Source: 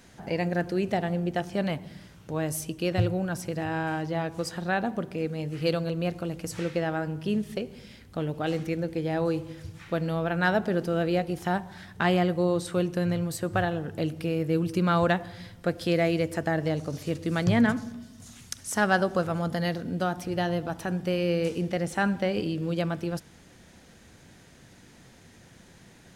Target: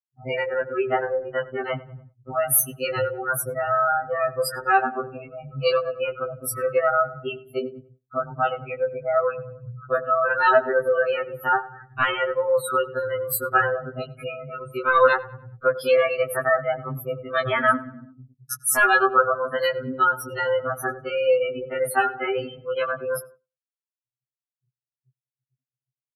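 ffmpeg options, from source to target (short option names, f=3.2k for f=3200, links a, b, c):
-filter_complex "[0:a]equalizer=f=120:t=o:w=0.26:g=5.5,acrossover=split=390|4300[a][b][c];[a]acompressor=threshold=-36dB:ratio=6[d];[d][b][c]amix=inputs=3:normalize=0,aexciter=amount=6.5:drive=4.3:freq=9.9k,volume=19dB,asoftclip=hard,volume=-19dB,equalizer=f=1.3k:t=o:w=0.31:g=14.5,afftfilt=real='re*gte(hypot(re,im),0.0316)':imag='im*gte(hypot(re,im),0.0316)':win_size=1024:overlap=0.75,asplit=2[e][f];[f]adelay=97,lowpass=f=2k:p=1,volume=-18dB,asplit=2[g][h];[h]adelay=97,lowpass=f=2k:p=1,volume=0.52,asplit=2[i][j];[j]adelay=97,lowpass=f=2k:p=1,volume=0.52,asplit=2[k][l];[l]adelay=97,lowpass=f=2k:p=1,volume=0.52[m];[g][i][k][m]amix=inputs=4:normalize=0[n];[e][n]amix=inputs=2:normalize=0,agate=range=-33dB:threshold=-44dB:ratio=3:detection=peak,afftfilt=real='re*2.45*eq(mod(b,6),0)':imag='im*2.45*eq(mod(b,6),0)':win_size=2048:overlap=0.75,volume=8.5dB"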